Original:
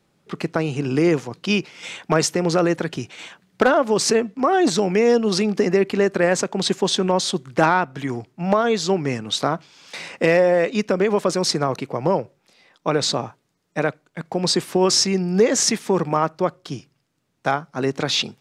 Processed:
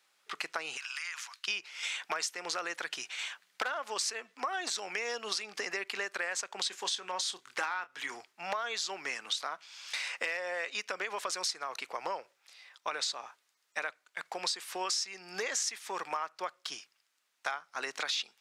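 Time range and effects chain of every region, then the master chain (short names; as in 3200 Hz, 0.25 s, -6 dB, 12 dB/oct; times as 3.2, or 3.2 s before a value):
0.77–1.48 HPF 1200 Hz 24 dB/oct + compressor 4:1, threshold -35 dBFS
6.68–8.15 notch 660 Hz, Q 10 + doubler 28 ms -13 dB
whole clip: HPF 1300 Hz 12 dB/oct; compressor, threshold -33 dBFS; gain +1 dB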